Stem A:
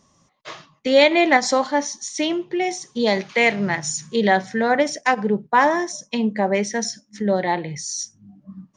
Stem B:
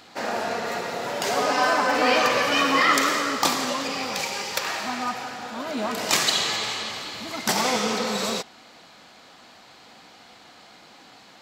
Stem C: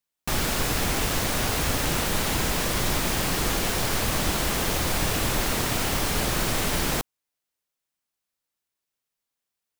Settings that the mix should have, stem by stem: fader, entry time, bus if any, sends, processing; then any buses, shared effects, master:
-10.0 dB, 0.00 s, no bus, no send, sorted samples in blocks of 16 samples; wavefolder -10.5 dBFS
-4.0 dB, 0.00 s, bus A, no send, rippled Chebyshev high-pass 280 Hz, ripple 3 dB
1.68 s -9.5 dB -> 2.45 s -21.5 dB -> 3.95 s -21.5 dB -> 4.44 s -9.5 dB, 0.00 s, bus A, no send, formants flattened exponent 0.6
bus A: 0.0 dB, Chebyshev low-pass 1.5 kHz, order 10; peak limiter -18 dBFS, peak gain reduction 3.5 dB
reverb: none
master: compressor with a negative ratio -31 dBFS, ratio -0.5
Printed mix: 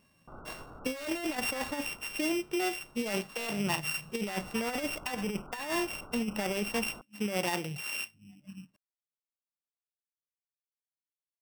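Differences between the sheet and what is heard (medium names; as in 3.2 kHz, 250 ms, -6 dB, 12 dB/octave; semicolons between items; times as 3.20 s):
stem B: muted; stem C -9.5 dB -> -21.0 dB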